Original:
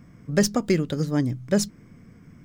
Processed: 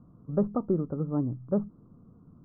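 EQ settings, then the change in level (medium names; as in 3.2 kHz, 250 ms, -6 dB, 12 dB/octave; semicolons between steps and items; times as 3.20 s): Chebyshev low-pass 1.3 kHz, order 6; -5.0 dB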